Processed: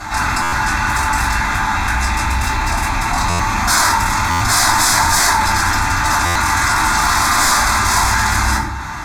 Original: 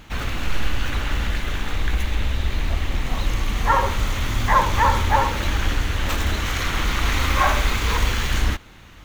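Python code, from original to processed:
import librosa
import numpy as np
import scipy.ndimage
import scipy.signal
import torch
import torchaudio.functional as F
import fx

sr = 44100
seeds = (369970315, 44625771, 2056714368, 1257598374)

y = fx.rattle_buzz(x, sr, strikes_db=-23.0, level_db=-17.0)
y = scipy.signal.sosfilt(scipy.signal.butter(2, 76.0, 'highpass', fs=sr, output='sos'), y)
y = fx.small_body(y, sr, hz=(870.0, 2700.0), ring_ms=35, db=12)
y = (np.mod(10.0 ** (14.5 / 20.0) * y + 1.0, 2.0) - 1.0) / 10.0 ** (14.5 / 20.0)
y = scipy.signal.sosfilt(scipy.signal.butter(2, 9300.0, 'lowpass', fs=sr, output='sos'), y)
y = fx.low_shelf(y, sr, hz=270.0, db=-12.0)
y = fx.fixed_phaser(y, sr, hz=1200.0, stages=4)
y = fx.room_shoebox(y, sr, seeds[0], volume_m3=34.0, walls='mixed', distance_m=2.5)
y = fx.buffer_glitch(y, sr, at_s=(0.42, 3.29, 4.3, 6.25), block=512, repeats=8)
y = fx.env_flatten(y, sr, amount_pct=50)
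y = y * 10.0 ** (-1.5 / 20.0)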